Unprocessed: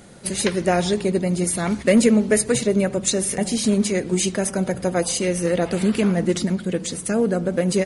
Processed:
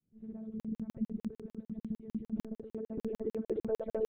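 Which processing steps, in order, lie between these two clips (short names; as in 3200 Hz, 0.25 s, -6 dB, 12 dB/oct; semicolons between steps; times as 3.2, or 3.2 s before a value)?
opening faded in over 1.85 s; echoes that change speed 0.101 s, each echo -1 st, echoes 3; monotone LPC vocoder at 8 kHz 220 Hz; time stretch by phase-locked vocoder 0.52×; tilt +3 dB/oct; transient shaper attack -5 dB, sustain 0 dB; compressor 6:1, threshold -32 dBFS, peak gain reduction 13 dB; reverb removal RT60 1.2 s; low-pass sweep 190 Hz -> 1400 Hz, 2.13–5.32; on a send: flutter echo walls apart 11.4 m, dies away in 0.22 s; on the sum: crackling interface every 0.15 s, samples 2048, zero, from 0.6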